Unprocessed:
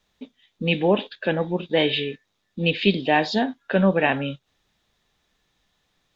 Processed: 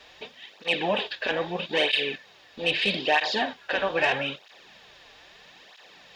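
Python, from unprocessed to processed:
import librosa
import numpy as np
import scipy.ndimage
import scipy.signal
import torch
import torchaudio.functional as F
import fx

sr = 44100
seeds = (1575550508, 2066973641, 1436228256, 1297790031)

y = fx.bin_compress(x, sr, power=0.6)
y = fx.peak_eq(y, sr, hz=200.0, db=-14.5, octaves=2.3)
y = 10.0 ** (-9.5 / 20.0) * np.tanh(y / 10.0 ** (-9.5 / 20.0))
y = fx.quant_dither(y, sr, seeds[0], bits=12, dither='none')
y = fx.flanger_cancel(y, sr, hz=0.78, depth_ms=5.8)
y = y * 10.0 ** (1.5 / 20.0)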